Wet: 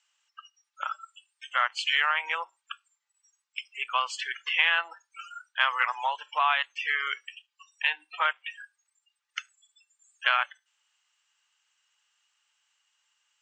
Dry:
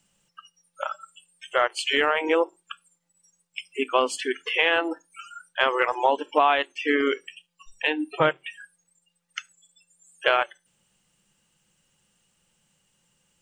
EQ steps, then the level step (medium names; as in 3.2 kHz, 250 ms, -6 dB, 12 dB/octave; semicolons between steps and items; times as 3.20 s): high-pass 1 kHz 24 dB/octave; steep low-pass 8 kHz 72 dB/octave; distance through air 53 m; 0.0 dB